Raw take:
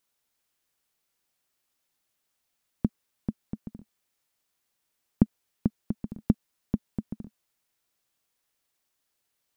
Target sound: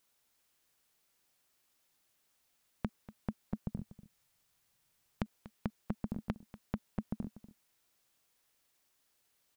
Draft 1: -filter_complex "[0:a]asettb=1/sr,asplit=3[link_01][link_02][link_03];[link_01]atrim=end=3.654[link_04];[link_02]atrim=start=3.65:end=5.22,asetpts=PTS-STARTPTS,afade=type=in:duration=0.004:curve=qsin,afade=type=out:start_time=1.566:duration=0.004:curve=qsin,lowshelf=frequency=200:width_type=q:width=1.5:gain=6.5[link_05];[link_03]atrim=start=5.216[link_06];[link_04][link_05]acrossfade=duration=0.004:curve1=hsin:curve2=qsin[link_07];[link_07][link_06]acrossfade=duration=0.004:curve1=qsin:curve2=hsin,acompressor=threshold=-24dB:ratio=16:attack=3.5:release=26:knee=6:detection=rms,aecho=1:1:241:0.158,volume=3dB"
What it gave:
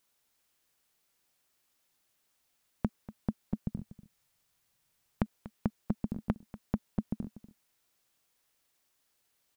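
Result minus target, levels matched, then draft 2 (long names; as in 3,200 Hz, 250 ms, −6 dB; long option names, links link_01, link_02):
downward compressor: peak gain reduction −6.5 dB
-filter_complex "[0:a]asettb=1/sr,asplit=3[link_01][link_02][link_03];[link_01]atrim=end=3.654[link_04];[link_02]atrim=start=3.65:end=5.22,asetpts=PTS-STARTPTS,afade=type=in:duration=0.004:curve=qsin,afade=type=out:start_time=1.566:duration=0.004:curve=qsin,lowshelf=frequency=200:width_type=q:width=1.5:gain=6.5[link_05];[link_03]atrim=start=5.216[link_06];[link_04][link_05]acrossfade=duration=0.004:curve1=hsin:curve2=qsin[link_07];[link_07][link_06]acrossfade=duration=0.004:curve1=qsin:curve2=hsin,acompressor=threshold=-31dB:ratio=16:attack=3.5:release=26:knee=6:detection=rms,aecho=1:1:241:0.158,volume=3dB"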